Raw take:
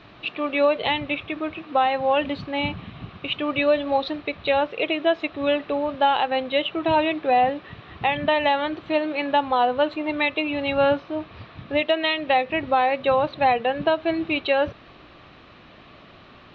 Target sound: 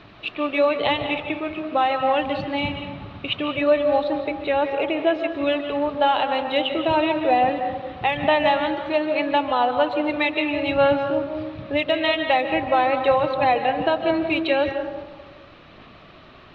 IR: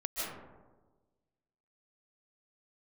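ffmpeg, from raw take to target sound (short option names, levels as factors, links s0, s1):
-filter_complex "[0:a]asettb=1/sr,asplit=3[s0][s1][s2];[s0]atrim=end=3.484[s3];[s1]atrim=start=3.48:end=5.42,asetpts=PTS-STARTPTS,afade=t=in:d=0.004:c=qsin,afade=t=out:st=1.936:d=0.004:c=qsin,acrossover=split=2600[s4][s5];[s5]acompressor=threshold=0.00794:ratio=4:attack=1:release=60[s6];[s4][s6]amix=inputs=2:normalize=0[s7];[s2]atrim=start=5.416[s8];[s3][s7]acrossfade=d=0.004:c1=hsin:c2=qsin[s9];[s9][s8]acrossfade=d=0.004:c1=qsin:c2=hsin,aphaser=in_gain=1:out_gain=1:delay=3.3:decay=0.24:speed=1.2:type=sinusoidal,asplit=2[s10][s11];[1:a]atrim=start_sample=2205[s12];[s11][s12]afir=irnorm=-1:irlink=0,volume=0.422[s13];[s10][s13]amix=inputs=2:normalize=0,volume=0.75"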